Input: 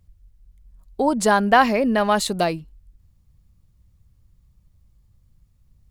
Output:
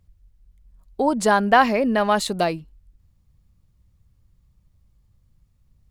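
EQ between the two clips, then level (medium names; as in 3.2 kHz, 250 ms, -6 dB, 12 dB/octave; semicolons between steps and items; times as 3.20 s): bass shelf 170 Hz -3 dB; treble shelf 5.5 kHz -4 dB; 0.0 dB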